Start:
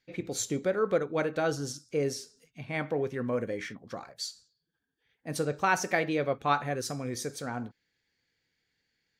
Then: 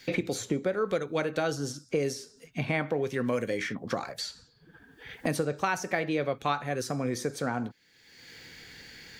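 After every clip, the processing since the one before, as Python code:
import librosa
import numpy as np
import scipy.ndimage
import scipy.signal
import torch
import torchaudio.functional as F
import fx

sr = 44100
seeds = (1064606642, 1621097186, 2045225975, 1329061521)

y = fx.band_squash(x, sr, depth_pct=100)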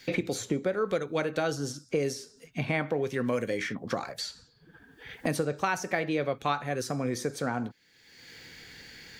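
y = x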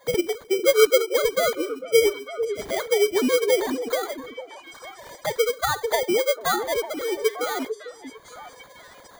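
y = fx.sine_speech(x, sr)
y = fx.sample_hold(y, sr, seeds[0], rate_hz=2700.0, jitter_pct=0)
y = fx.echo_stepped(y, sr, ms=449, hz=350.0, octaves=1.4, feedback_pct=70, wet_db=-7)
y = y * 10.0 ** (7.5 / 20.0)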